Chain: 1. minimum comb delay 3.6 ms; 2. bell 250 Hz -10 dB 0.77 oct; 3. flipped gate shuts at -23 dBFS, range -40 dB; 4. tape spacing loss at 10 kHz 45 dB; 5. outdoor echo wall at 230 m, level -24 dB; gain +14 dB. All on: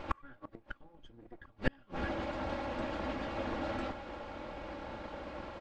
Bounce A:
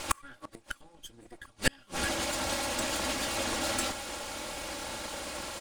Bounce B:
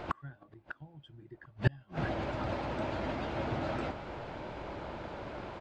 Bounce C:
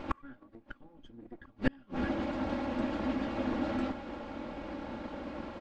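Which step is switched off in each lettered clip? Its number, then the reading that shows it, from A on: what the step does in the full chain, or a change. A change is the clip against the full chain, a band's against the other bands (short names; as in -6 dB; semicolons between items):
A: 4, 4 kHz band +14.0 dB; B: 1, 125 Hz band +7.5 dB; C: 2, 250 Hz band +7.5 dB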